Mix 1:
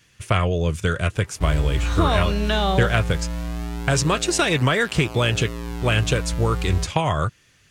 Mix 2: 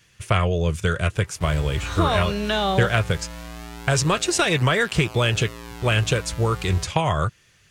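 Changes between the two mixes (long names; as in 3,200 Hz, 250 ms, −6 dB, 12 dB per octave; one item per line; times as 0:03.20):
speech: add parametric band 270 Hz −8.5 dB 0.23 octaves
background: add low-shelf EQ 440 Hz −11 dB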